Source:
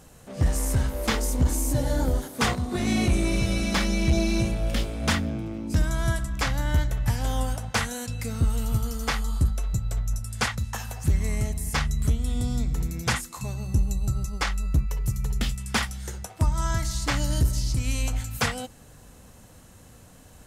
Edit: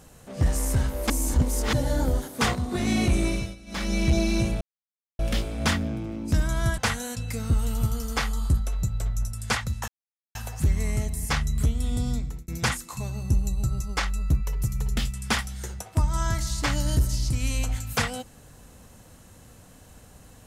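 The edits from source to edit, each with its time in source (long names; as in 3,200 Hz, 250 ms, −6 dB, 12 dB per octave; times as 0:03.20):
0:01.10–0:01.73: reverse
0:03.26–0:03.96: duck −21 dB, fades 0.30 s
0:04.61: splice in silence 0.58 s
0:06.20–0:07.69: remove
0:10.79: splice in silence 0.47 s
0:12.54–0:12.92: fade out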